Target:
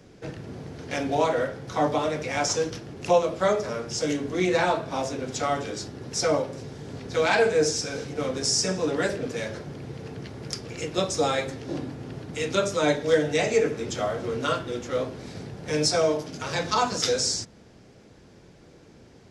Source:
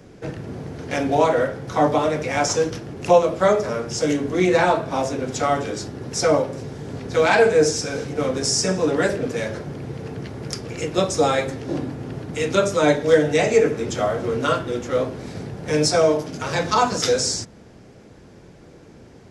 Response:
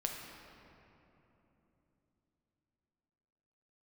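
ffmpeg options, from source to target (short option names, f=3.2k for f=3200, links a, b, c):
-af "equalizer=f=4.3k:t=o:w=1.7:g=4.5,volume=-6dB"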